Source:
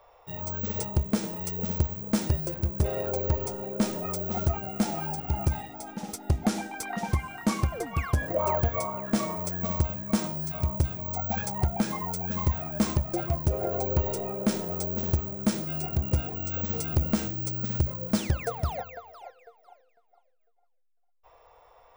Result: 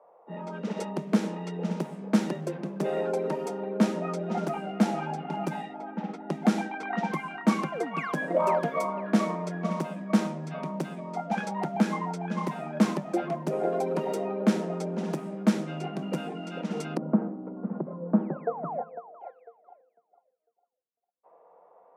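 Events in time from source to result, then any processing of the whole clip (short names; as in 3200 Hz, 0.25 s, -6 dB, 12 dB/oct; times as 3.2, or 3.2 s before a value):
16.97–19.21 LPF 1100 Hz 24 dB/oct
whole clip: low-pass opened by the level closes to 710 Hz, open at -24.5 dBFS; steep high-pass 160 Hz 96 dB/oct; tone controls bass +1 dB, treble -11 dB; gain +3 dB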